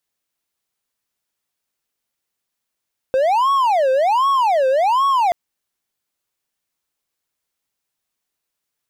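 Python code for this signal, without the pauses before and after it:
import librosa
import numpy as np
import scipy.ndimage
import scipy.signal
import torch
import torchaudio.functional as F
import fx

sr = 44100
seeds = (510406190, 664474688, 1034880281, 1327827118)

y = fx.siren(sr, length_s=2.18, kind='wail', low_hz=520.0, high_hz=1110.0, per_s=1.3, wave='triangle', level_db=-11.0)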